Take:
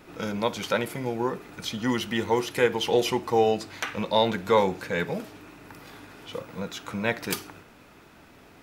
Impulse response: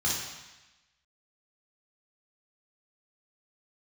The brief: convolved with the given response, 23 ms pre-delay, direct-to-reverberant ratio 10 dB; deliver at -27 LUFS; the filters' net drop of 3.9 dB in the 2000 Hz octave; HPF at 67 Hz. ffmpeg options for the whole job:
-filter_complex "[0:a]highpass=67,equalizer=f=2k:t=o:g=-5,asplit=2[a][b];[1:a]atrim=start_sample=2205,adelay=23[c];[b][c]afir=irnorm=-1:irlink=0,volume=-19dB[d];[a][d]amix=inputs=2:normalize=0"

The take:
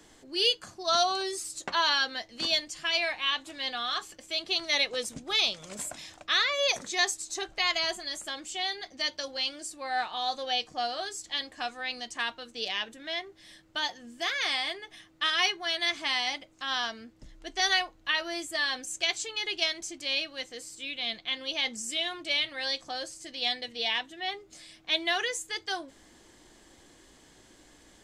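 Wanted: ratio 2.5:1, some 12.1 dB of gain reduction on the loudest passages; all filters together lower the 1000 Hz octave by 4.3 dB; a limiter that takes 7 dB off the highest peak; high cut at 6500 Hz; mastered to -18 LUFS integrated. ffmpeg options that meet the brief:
-af "lowpass=6.5k,equalizer=f=1k:t=o:g=-6.5,acompressor=threshold=-41dB:ratio=2.5,volume=23.5dB,alimiter=limit=-6.5dB:level=0:latency=1"

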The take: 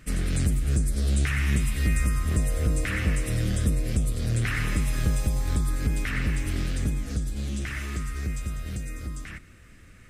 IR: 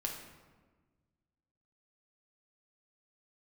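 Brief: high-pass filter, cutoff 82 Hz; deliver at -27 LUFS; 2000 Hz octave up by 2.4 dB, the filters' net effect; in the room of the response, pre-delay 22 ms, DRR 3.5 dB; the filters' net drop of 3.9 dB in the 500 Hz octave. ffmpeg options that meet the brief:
-filter_complex "[0:a]highpass=82,equalizer=f=500:t=o:g=-5,equalizer=f=2k:t=o:g=3,asplit=2[a][b];[1:a]atrim=start_sample=2205,adelay=22[c];[b][c]afir=irnorm=-1:irlink=0,volume=-4.5dB[d];[a][d]amix=inputs=2:normalize=0,volume=1.5dB"

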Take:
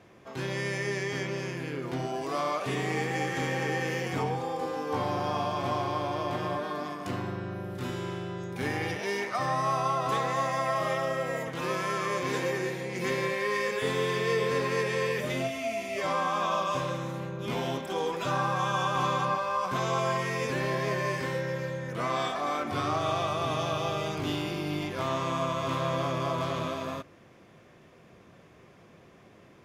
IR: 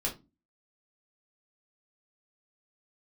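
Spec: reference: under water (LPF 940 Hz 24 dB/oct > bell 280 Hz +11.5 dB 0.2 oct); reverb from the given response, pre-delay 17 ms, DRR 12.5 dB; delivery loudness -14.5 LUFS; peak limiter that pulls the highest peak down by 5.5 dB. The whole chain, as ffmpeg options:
-filter_complex "[0:a]alimiter=limit=-21.5dB:level=0:latency=1,asplit=2[a][b];[1:a]atrim=start_sample=2205,adelay=17[c];[b][c]afir=irnorm=-1:irlink=0,volume=-17dB[d];[a][d]amix=inputs=2:normalize=0,lowpass=f=940:w=0.5412,lowpass=f=940:w=1.3066,equalizer=f=280:t=o:w=0.2:g=11.5,volume=17.5dB"

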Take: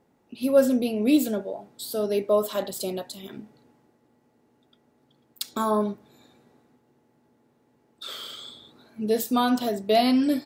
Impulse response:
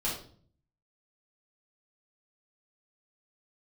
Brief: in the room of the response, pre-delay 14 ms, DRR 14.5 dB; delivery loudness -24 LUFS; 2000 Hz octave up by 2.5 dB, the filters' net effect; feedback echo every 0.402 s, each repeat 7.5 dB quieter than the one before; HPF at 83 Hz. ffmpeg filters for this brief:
-filter_complex "[0:a]highpass=83,equalizer=f=2k:t=o:g=3.5,aecho=1:1:402|804|1206|1608|2010:0.422|0.177|0.0744|0.0312|0.0131,asplit=2[a][b];[1:a]atrim=start_sample=2205,adelay=14[c];[b][c]afir=irnorm=-1:irlink=0,volume=-20dB[d];[a][d]amix=inputs=2:normalize=0,volume=0.5dB"

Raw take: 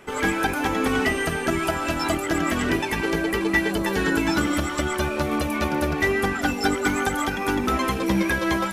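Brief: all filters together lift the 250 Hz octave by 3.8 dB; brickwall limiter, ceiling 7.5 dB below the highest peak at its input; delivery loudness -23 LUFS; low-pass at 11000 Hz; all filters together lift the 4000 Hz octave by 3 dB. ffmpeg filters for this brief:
-af "lowpass=11k,equalizer=f=250:t=o:g=5,equalizer=f=4k:t=o:g=4,alimiter=limit=-13dB:level=0:latency=1"

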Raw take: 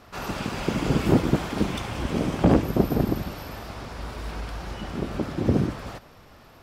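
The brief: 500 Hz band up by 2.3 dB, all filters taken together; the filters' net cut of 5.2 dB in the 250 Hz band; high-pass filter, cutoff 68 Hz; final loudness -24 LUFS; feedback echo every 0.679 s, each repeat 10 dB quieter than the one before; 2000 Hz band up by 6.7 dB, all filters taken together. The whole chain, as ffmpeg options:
-af "highpass=68,equalizer=f=250:t=o:g=-9,equalizer=f=500:t=o:g=5.5,equalizer=f=2k:t=o:g=8.5,aecho=1:1:679|1358|2037|2716:0.316|0.101|0.0324|0.0104,volume=3dB"

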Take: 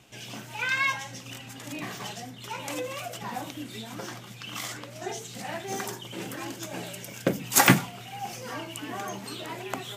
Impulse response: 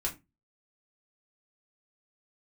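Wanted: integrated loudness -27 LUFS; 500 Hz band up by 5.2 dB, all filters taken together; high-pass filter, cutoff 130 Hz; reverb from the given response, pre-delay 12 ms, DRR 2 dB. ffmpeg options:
-filter_complex "[0:a]highpass=130,equalizer=f=500:t=o:g=6.5,asplit=2[a][b];[1:a]atrim=start_sample=2205,adelay=12[c];[b][c]afir=irnorm=-1:irlink=0,volume=-5.5dB[d];[a][d]amix=inputs=2:normalize=0"

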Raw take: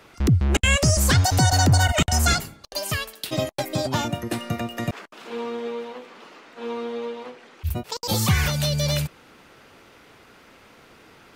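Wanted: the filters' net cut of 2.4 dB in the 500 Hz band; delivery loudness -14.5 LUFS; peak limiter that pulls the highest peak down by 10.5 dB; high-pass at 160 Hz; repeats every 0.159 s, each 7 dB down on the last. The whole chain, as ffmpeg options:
-af "highpass=160,equalizer=f=500:t=o:g=-3,alimiter=limit=-18.5dB:level=0:latency=1,aecho=1:1:159|318|477|636|795:0.447|0.201|0.0905|0.0407|0.0183,volume=14dB"

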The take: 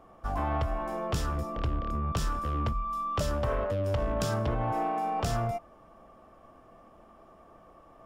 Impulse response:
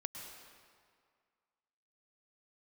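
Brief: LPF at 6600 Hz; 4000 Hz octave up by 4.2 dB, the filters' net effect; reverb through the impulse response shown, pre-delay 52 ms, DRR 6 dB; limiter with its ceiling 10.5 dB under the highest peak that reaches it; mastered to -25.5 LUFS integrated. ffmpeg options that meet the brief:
-filter_complex "[0:a]lowpass=6.6k,equalizer=f=4k:t=o:g=6.5,alimiter=level_in=3dB:limit=-24dB:level=0:latency=1,volume=-3dB,asplit=2[a][b];[1:a]atrim=start_sample=2205,adelay=52[c];[b][c]afir=irnorm=-1:irlink=0,volume=-4.5dB[d];[a][d]amix=inputs=2:normalize=0,volume=8.5dB"

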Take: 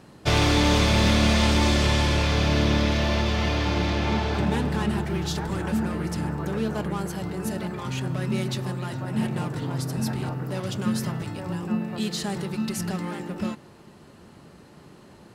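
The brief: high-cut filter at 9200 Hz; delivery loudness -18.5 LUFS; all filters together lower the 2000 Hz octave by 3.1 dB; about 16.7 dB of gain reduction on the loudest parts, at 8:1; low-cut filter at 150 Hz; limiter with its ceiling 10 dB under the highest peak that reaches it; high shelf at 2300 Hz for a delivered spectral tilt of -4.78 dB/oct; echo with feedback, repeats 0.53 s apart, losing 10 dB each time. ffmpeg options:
-af "highpass=150,lowpass=9.2k,equalizer=f=2k:t=o:g=-7,highshelf=f=2.3k:g=5.5,acompressor=threshold=-36dB:ratio=8,alimiter=level_in=10.5dB:limit=-24dB:level=0:latency=1,volume=-10.5dB,aecho=1:1:530|1060|1590|2120:0.316|0.101|0.0324|0.0104,volume=24.5dB"

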